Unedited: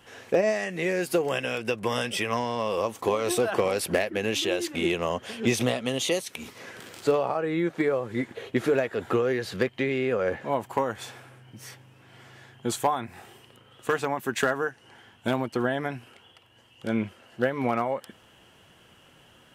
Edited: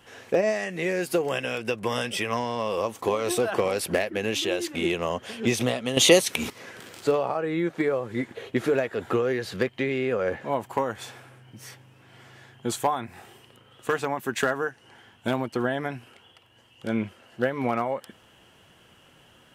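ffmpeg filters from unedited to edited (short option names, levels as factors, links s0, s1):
-filter_complex "[0:a]asplit=3[s0][s1][s2];[s0]atrim=end=5.972[s3];[s1]atrim=start=5.968:end=6.502,asetpts=PTS-STARTPTS,volume=3.16[s4];[s2]atrim=start=6.498[s5];[s3][s4]acrossfade=d=0.004:c1=hsin:c2=hsin[s6];[s6][s5]acrossfade=d=0.004:c1=hsin:c2=hsin"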